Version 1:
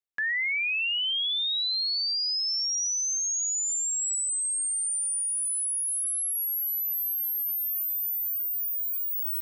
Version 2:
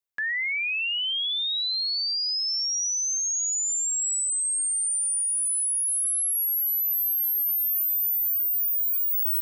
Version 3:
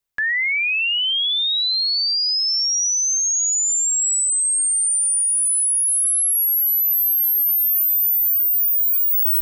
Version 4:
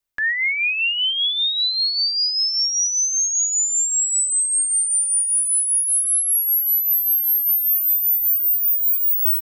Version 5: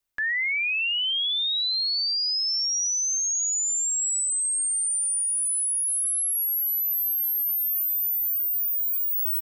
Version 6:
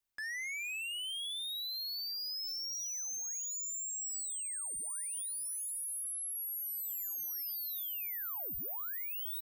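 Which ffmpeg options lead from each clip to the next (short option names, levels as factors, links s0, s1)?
-af "highshelf=f=9500:g=6"
-af "lowshelf=f=87:g=11.5,volume=2.24"
-af "aecho=1:1:3.3:0.31,volume=0.891"
-af "alimiter=limit=0.075:level=0:latency=1"
-af "asoftclip=type=tanh:threshold=0.0224,volume=0.531"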